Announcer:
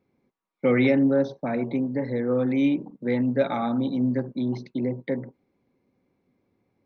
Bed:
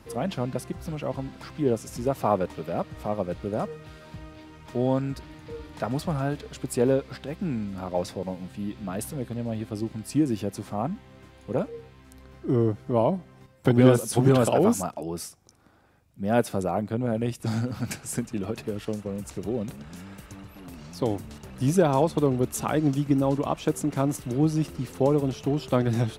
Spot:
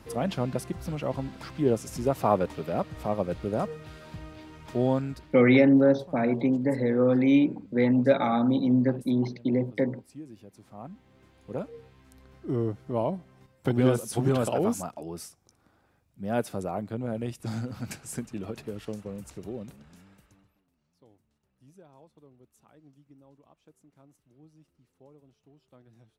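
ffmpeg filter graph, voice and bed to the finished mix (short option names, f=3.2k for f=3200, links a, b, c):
-filter_complex "[0:a]adelay=4700,volume=1.5dB[a];[1:a]volume=14.5dB,afade=t=out:st=4.84:d=0.64:silence=0.1,afade=t=in:st=10.52:d=1.32:silence=0.188365,afade=t=out:st=19.08:d=1.57:silence=0.0398107[b];[a][b]amix=inputs=2:normalize=0"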